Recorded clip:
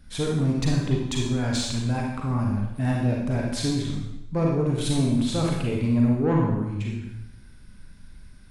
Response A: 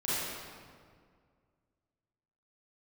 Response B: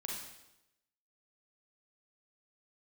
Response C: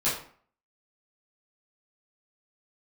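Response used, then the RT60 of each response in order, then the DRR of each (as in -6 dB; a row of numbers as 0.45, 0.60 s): B; 2.0, 0.90, 0.50 s; -11.5, -2.0, -11.0 dB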